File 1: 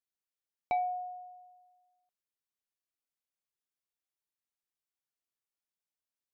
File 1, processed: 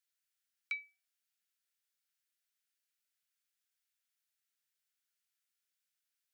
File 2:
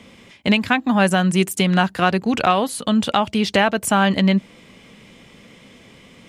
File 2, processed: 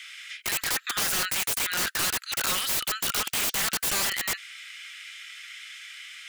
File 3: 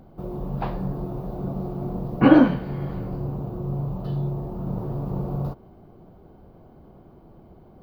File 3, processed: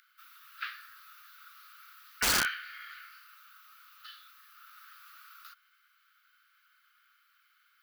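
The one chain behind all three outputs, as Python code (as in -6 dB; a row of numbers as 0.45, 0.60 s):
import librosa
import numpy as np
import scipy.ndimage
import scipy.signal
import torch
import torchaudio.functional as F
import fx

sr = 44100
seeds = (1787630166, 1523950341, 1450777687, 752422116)

p1 = scipy.signal.sosfilt(scipy.signal.butter(16, 1300.0, 'highpass', fs=sr, output='sos'), x)
p2 = fx.over_compress(p1, sr, threshold_db=-28.0, ratio=-0.5)
p3 = p1 + F.gain(torch.from_numpy(p2), 0.0).numpy()
y = (np.mod(10.0 ** (21.0 / 20.0) * p3 + 1.0, 2.0) - 1.0) / 10.0 ** (21.0 / 20.0)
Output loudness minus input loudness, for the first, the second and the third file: -6.5, -7.0, -6.0 LU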